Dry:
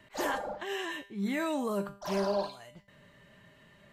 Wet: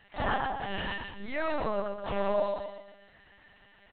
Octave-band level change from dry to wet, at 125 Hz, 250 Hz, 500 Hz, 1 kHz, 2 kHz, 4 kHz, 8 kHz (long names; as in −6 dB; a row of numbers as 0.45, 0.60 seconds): +0.5 dB, −5.0 dB, +2.0 dB, +4.0 dB, +2.0 dB, 0.0 dB, below −30 dB